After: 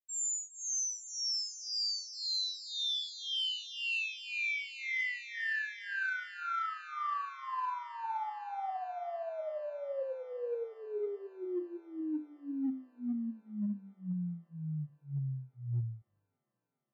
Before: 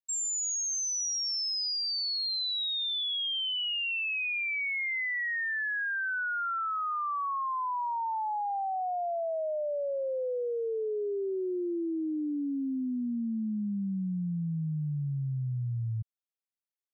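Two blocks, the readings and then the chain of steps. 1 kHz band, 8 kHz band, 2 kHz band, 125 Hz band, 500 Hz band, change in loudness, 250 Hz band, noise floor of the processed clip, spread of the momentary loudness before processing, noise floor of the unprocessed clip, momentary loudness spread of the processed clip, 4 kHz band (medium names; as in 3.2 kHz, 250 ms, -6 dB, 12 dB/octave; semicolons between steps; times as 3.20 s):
-6.5 dB, no reading, -5.0 dB, -6.0 dB, -7.0 dB, -5.5 dB, -6.5 dB, -80 dBFS, 4 LU, under -85 dBFS, 8 LU, -5.0 dB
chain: hum notches 50/100/150/200/250/300/350/400/450 Hz; harmonic tremolo 1.9 Hz, depth 100%, crossover 660 Hz; flange 1.5 Hz, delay 3.4 ms, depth 7 ms, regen +64%; in parallel at -7.5 dB: overload inside the chain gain 34 dB; on the sum: loudest bins only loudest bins 32; on a send: feedback echo behind a high-pass 408 ms, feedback 78%, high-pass 1.6 kHz, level -13.5 dB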